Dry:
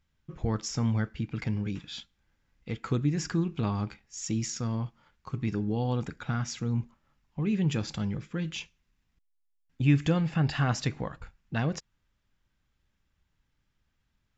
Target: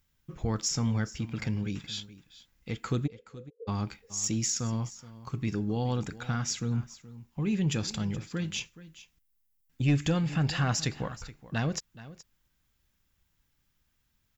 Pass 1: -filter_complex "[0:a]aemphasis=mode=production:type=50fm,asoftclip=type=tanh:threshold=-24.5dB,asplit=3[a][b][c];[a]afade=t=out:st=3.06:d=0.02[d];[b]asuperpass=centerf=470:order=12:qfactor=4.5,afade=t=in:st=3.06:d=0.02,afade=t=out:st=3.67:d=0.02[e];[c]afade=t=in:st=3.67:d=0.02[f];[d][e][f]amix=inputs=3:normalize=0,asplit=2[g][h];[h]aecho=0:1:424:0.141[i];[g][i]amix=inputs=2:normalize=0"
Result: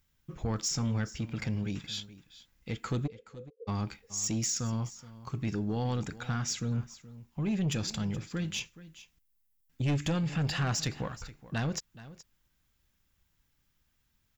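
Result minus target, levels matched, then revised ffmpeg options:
soft clip: distortion +9 dB
-filter_complex "[0:a]aemphasis=mode=production:type=50fm,asoftclip=type=tanh:threshold=-16.5dB,asplit=3[a][b][c];[a]afade=t=out:st=3.06:d=0.02[d];[b]asuperpass=centerf=470:order=12:qfactor=4.5,afade=t=in:st=3.06:d=0.02,afade=t=out:st=3.67:d=0.02[e];[c]afade=t=in:st=3.67:d=0.02[f];[d][e][f]amix=inputs=3:normalize=0,asplit=2[g][h];[h]aecho=0:1:424:0.141[i];[g][i]amix=inputs=2:normalize=0"

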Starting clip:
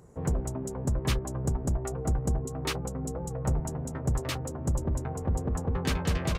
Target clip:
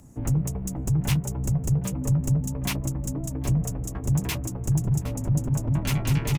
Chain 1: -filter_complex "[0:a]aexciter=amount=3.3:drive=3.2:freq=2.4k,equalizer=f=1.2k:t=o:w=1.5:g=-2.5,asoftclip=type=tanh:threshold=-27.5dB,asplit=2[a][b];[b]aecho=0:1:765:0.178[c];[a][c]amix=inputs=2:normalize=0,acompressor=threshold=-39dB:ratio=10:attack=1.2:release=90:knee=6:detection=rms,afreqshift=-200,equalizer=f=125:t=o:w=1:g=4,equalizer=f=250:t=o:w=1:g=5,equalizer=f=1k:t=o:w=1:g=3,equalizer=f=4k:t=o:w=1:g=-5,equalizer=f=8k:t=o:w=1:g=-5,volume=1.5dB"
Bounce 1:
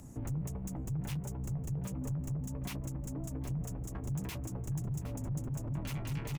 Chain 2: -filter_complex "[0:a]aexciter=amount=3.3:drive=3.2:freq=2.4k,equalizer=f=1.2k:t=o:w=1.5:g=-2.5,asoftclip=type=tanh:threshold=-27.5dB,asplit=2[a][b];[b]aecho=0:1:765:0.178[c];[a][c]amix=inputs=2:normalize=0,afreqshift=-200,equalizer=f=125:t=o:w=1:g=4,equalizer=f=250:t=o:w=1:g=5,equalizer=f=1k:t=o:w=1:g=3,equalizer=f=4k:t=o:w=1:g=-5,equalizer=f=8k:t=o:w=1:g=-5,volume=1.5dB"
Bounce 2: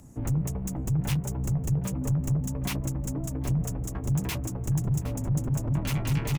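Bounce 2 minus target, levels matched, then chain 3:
soft clip: distortion +7 dB
-filter_complex "[0:a]aexciter=amount=3.3:drive=3.2:freq=2.4k,equalizer=f=1.2k:t=o:w=1.5:g=-2.5,asoftclip=type=tanh:threshold=-20dB,asplit=2[a][b];[b]aecho=0:1:765:0.178[c];[a][c]amix=inputs=2:normalize=0,afreqshift=-200,equalizer=f=125:t=o:w=1:g=4,equalizer=f=250:t=o:w=1:g=5,equalizer=f=1k:t=o:w=1:g=3,equalizer=f=4k:t=o:w=1:g=-5,equalizer=f=8k:t=o:w=1:g=-5,volume=1.5dB"

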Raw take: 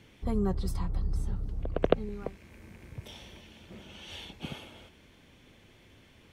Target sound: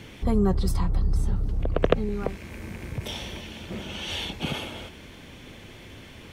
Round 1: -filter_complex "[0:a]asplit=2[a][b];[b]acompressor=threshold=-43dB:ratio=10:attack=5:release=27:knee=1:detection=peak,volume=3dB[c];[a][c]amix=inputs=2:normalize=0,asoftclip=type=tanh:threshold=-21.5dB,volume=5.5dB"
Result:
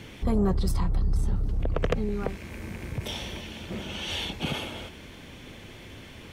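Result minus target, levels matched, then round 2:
soft clip: distortion +8 dB
-filter_complex "[0:a]asplit=2[a][b];[b]acompressor=threshold=-43dB:ratio=10:attack=5:release=27:knee=1:detection=peak,volume=3dB[c];[a][c]amix=inputs=2:normalize=0,asoftclip=type=tanh:threshold=-10.5dB,volume=5.5dB"

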